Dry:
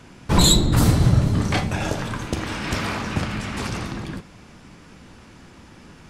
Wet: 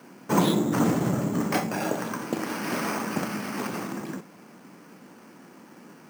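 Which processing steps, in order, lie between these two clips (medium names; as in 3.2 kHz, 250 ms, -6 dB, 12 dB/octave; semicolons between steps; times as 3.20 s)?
high-pass 190 Hz 24 dB/octave; treble shelf 2.9 kHz -11 dB; careless resampling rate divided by 6×, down filtered, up hold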